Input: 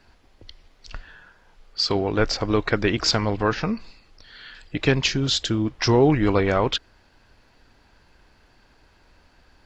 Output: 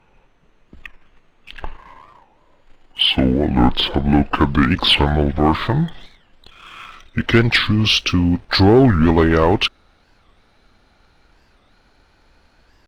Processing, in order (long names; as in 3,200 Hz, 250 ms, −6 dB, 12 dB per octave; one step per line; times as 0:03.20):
gliding playback speed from 55% → 95%
leveller curve on the samples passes 1
wow of a warped record 45 rpm, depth 250 cents
level +3.5 dB